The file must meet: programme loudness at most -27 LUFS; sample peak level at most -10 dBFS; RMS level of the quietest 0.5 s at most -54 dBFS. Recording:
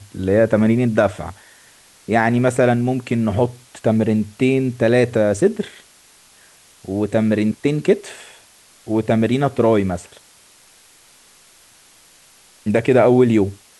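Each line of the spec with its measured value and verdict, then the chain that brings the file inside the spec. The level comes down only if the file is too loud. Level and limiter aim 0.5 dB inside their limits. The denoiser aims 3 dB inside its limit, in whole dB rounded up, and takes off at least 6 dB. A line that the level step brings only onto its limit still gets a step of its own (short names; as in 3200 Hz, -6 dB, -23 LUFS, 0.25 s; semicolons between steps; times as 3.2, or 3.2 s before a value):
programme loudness -18.0 LUFS: fail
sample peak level -4.0 dBFS: fail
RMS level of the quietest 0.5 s -50 dBFS: fail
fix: gain -9.5 dB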